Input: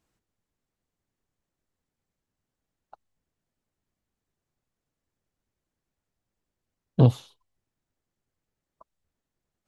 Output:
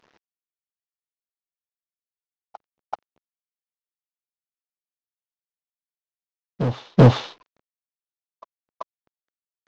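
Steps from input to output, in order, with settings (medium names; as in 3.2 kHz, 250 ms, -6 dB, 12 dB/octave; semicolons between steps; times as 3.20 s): CVSD coder 32 kbps; overdrive pedal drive 27 dB, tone 1.1 kHz, clips at -5.5 dBFS; reverse echo 384 ms -12 dB; trim +4 dB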